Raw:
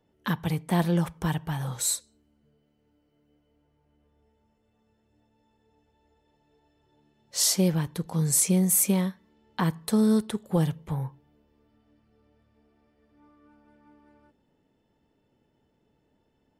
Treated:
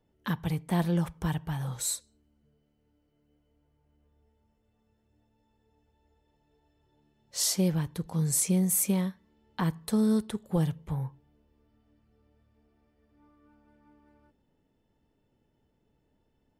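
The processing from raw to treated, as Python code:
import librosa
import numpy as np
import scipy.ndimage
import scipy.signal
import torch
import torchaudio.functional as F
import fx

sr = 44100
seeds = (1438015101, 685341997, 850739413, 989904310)

y = fx.low_shelf(x, sr, hz=81.0, db=10.5)
y = y * librosa.db_to_amplitude(-4.5)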